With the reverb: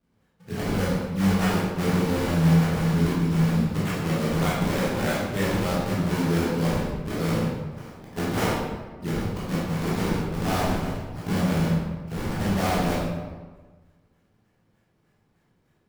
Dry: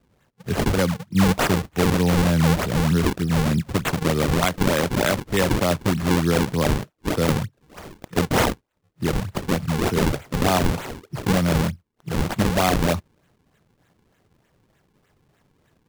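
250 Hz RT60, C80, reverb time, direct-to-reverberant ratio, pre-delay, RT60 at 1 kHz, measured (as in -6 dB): 1.5 s, 2.0 dB, 1.4 s, -8.0 dB, 12 ms, 1.4 s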